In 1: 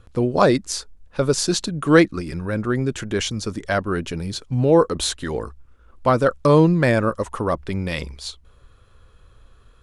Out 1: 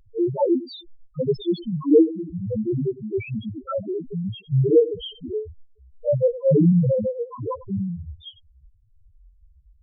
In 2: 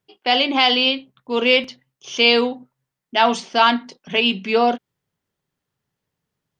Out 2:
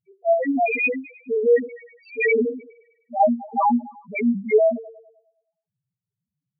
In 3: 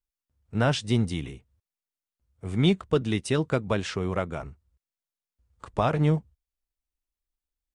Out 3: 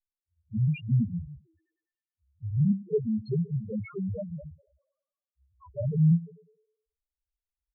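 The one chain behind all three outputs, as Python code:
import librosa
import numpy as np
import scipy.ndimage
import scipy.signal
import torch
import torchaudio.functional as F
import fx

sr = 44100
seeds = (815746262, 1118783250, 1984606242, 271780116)

y = fx.partial_stretch(x, sr, pct=91)
y = fx.echo_thinned(y, sr, ms=102, feedback_pct=52, hz=260.0, wet_db=-15.0)
y = fx.spec_topn(y, sr, count=1)
y = y * librosa.db_to_amplitude(7.5)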